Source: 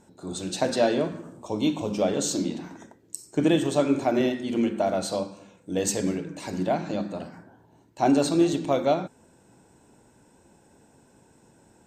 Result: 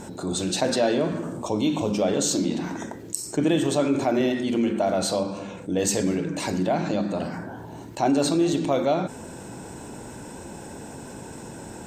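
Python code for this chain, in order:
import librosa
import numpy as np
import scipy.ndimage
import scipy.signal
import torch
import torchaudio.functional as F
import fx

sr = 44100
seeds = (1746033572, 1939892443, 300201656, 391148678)

y = fx.high_shelf(x, sr, hz=5300.0, db=-8.5, at=(5.23, 5.79))
y = fx.env_flatten(y, sr, amount_pct=50)
y = F.gain(torch.from_numpy(y), -2.0).numpy()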